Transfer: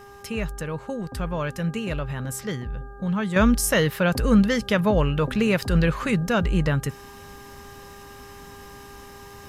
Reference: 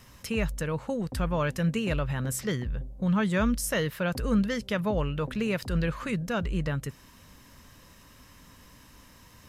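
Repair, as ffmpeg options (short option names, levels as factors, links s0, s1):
-af "bandreject=f=401.8:t=h:w=4,bandreject=f=803.6:t=h:w=4,bandreject=f=1205.4:t=h:w=4,bandreject=f=1607.2:t=h:w=4,asetnsamples=n=441:p=0,asendcmd='3.36 volume volume -7.5dB',volume=1"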